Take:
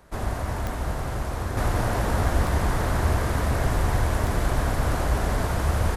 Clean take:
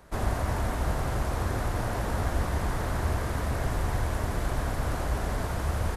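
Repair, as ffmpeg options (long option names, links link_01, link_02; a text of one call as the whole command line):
ffmpeg -i in.wav -af "adeclick=threshold=4,asetnsamples=nb_out_samples=441:pad=0,asendcmd='1.57 volume volume -5.5dB',volume=0dB" out.wav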